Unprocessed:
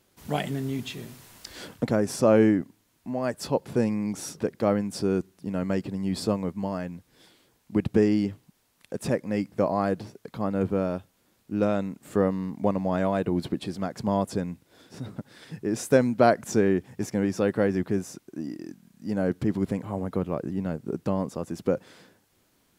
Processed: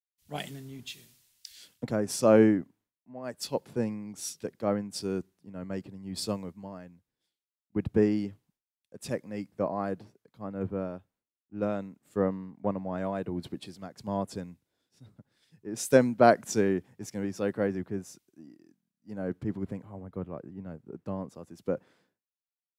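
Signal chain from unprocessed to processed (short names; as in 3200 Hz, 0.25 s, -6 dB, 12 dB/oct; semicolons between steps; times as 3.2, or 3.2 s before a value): expander -54 dBFS; three-band expander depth 100%; gain -7.5 dB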